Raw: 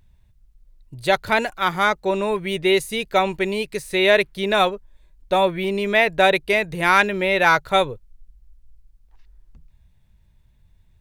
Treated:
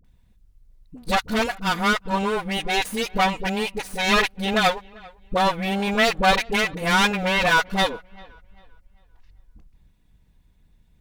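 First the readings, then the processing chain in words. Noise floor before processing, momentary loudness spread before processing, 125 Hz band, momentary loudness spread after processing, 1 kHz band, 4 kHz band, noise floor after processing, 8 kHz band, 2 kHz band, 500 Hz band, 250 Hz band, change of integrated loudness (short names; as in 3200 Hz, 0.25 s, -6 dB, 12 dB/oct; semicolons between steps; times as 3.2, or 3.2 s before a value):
-57 dBFS, 7 LU, +1.5 dB, 7 LU, -1.5 dB, +1.0 dB, -59 dBFS, +4.0 dB, -2.0 dB, -6.0 dB, +1.0 dB, -2.0 dB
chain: minimum comb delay 4.1 ms; dispersion highs, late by 47 ms, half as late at 490 Hz; on a send: dark delay 0.394 s, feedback 31%, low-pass 3100 Hz, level -24 dB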